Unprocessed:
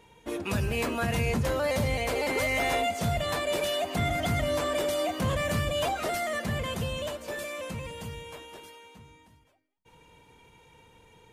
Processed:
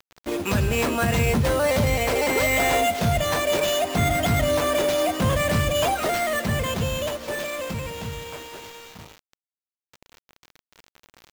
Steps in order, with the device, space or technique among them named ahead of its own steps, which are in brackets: early 8-bit sampler (sample-rate reducer 10 kHz, jitter 0%; bit crusher 8-bit); trim +6.5 dB

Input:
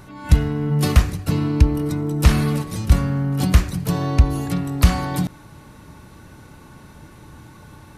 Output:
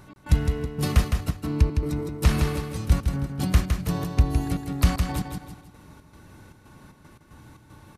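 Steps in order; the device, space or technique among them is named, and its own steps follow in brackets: trance gate with a delay (trance gate "x.xxx.xx.x.xx.x" 115 bpm -60 dB; feedback delay 161 ms, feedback 38%, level -5.5 dB); trim -6 dB

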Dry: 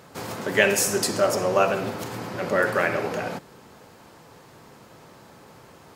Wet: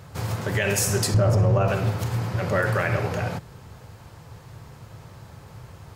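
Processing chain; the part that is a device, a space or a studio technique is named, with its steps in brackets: 1.14–1.68 s: tilt EQ -3 dB/octave; car stereo with a boomy subwoofer (resonant low shelf 160 Hz +14 dB, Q 1.5; peak limiter -12 dBFS, peak gain reduction 8 dB)

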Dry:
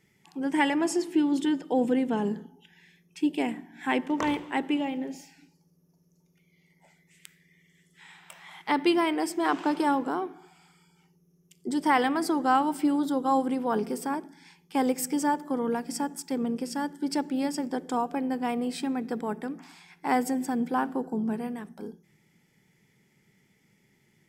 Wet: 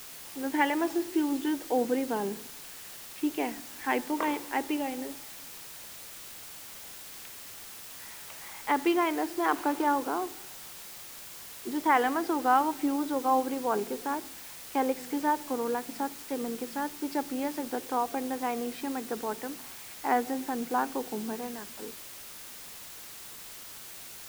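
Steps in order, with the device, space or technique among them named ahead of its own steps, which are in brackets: wax cylinder (band-pass 330–2500 Hz; wow and flutter; white noise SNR 13 dB)

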